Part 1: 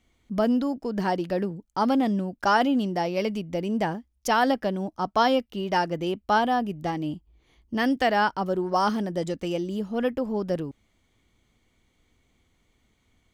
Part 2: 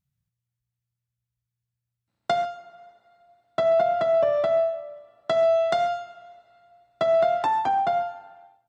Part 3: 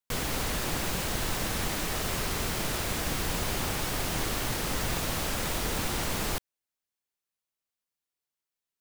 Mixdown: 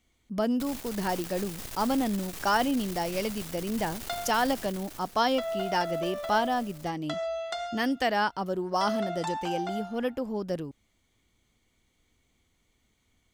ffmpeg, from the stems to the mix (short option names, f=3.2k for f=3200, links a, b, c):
-filter_complex "[0:a]volume=-4.5dB[a];[1:a]highpass=f=1.4k:p=1,adelay=1800,volume=-5.5dB[b];[2:a]acrusher=bits=4:dc=4:mix=0:aa=0.000001,adelay=500,volume=-10dB,afade=t=out:st=4.55:d=0.6:silence=0.281838[c];[a][b][c]amix=inputs=3:normalize=0,highshelf=f=4k:g=7"